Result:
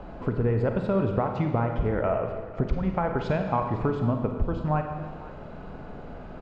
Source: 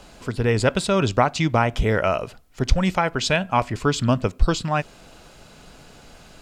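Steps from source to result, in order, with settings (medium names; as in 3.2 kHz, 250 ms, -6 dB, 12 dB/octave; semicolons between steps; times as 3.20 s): low-pass 1.1 kHz 12 dB/octave; compression 6:1, threshold -30 dBFS, peak gain reduction 19.5 dB; delay 499 ms -18 dB; on a send at -4 dB: reverberation RT60 1.4 s, pre-delay 35 ms; on the sum: trim +6.5 dB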